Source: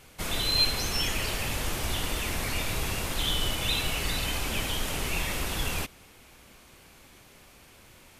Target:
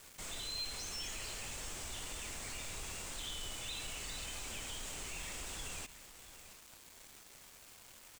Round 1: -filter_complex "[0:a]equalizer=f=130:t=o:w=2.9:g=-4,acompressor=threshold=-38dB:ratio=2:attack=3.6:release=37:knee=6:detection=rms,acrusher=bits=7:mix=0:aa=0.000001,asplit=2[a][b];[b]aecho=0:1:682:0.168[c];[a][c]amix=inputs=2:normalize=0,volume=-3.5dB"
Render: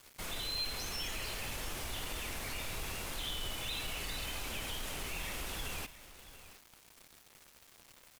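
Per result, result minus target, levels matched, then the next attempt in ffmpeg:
compressor: peak gain reduction -6 dB; 8000 Hz band -4.5 dB
-filter_complex "[0:a]equalizer=f=130:t=o:w=2.9:g=-4,acompressor=threshold=-48dB:ratio=2:attack=3.6:release=37:knee=6:detection=rms,acrusher=bits=7:mix=0:aa=0.000001,asplit=2[a][b];[b]aecho=0:1:682:0.168[c];[a][c]amix=inputs=2:normalize=0,volume=-3.5dB"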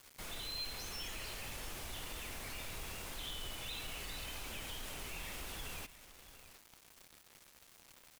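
8000 Hz band -4.0 dB
-filter_complex "[0:a]lowpass=f=7.8k:t=q:w=3.5,equalizer=f=130:t=o:w=2.9:g=-4,acompressor=threshold=-48dB:ratio=2:attack=3.6:release=37:knee=6:detection=rms,acrusher=bits=7:mix=0:aa=0.000001,asplit=2[a][b];[b]aecho=0:1:682:0.168[c];[a][c]amix=inputs=2:normalize=0,volume=-3.5dB"

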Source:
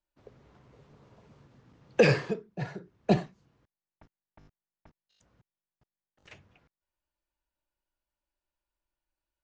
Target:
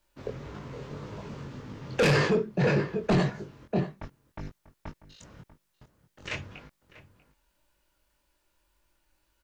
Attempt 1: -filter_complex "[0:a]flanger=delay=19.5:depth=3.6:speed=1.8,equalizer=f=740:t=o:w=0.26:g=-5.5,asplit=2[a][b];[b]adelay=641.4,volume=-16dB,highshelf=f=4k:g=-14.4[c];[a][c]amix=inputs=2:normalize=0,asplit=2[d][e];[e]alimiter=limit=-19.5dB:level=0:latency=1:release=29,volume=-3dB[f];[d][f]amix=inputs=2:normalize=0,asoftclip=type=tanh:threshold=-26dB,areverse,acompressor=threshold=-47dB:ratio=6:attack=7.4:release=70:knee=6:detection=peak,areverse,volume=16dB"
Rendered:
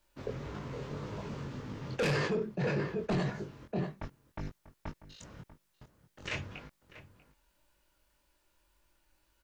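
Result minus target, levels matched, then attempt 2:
compressor: peak gain reduction +8 dB
-filter_complex "[0:a]flanger=delay=19.5:depth=3.6:speed=1.8,equalizer=f=740:t=o:w=0.26:g=-5.5,asplit=2[a][b];[b]adelay=641.4,volume=-16dB,highshelf=f=4k:g=-14.4[c];[a][c]amix=inputs=2:normalize=0,asplit=2[d][e];[e]alimiter=limit=-19.5dB:level=0:latency=1:release=29,volume=-3dB[f];[d][f]amix=inputs=2:normalize=0,asoftclip=type=tanh:threshold=-26dB,areverse,acompressor=threshold=-37.5dB:ratio=6:attack=7.4:release=70:knee=6:detection=peak,areverse,volume=16dB"

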